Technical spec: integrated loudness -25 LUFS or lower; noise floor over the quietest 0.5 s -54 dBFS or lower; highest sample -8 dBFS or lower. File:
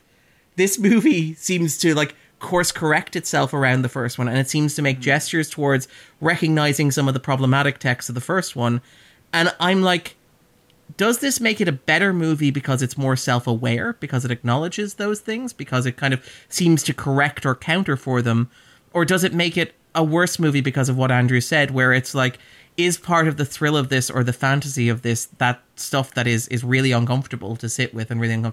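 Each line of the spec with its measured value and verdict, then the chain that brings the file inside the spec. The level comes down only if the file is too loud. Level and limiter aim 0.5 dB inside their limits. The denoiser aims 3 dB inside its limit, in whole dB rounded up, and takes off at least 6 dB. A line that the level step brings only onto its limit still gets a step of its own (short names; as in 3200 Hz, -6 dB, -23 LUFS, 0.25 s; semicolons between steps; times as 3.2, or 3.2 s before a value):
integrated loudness -20.0 LUFS: fail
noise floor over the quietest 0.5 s -58 dBFS: OK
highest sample -6.0 dBFS: fail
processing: gain -5.5 dB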